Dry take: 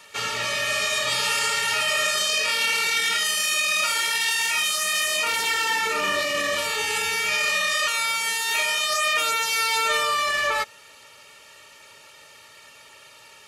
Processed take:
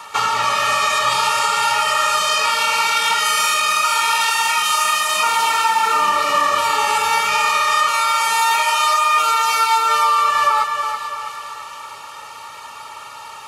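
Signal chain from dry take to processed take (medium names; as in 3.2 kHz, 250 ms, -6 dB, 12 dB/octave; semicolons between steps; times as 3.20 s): high-order bell 1 kHz +13 dB 1 oct; compression, threshold -22 dBFS, peak gain reduction 11.5 dB; two-band feedback delay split 2.8 kHz, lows 329 ms, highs 445 ms, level -6.5 dB; trim +7 dB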